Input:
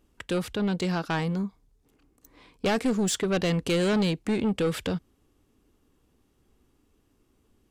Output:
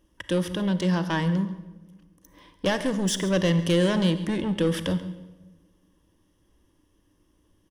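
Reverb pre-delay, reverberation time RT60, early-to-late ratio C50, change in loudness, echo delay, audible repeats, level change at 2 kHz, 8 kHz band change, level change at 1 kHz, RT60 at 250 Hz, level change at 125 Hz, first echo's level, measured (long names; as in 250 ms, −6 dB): 33 ms, 1.2 s, 12.0 dB, +2.0 dB, 137 ms, 1, +1.5 dB, 0.0 dB, 0.0 dB, 1.4 s, +4.5 dB, −17.5 dB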